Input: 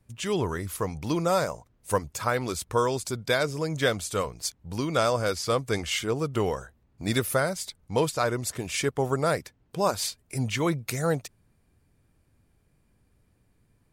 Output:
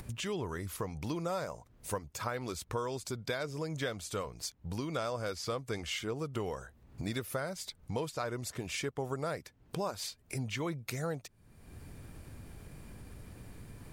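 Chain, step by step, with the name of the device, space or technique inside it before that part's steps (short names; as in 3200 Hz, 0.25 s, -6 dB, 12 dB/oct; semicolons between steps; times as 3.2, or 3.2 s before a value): upward and downward compression (upward compressor, threshold -33 dBFS; compressor 3:1, threshold -36 dBFS, peak gain reduction 13 dB); dynamic EQ 9800 Hz, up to -5 dB, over -55 dBFS, Q 0.93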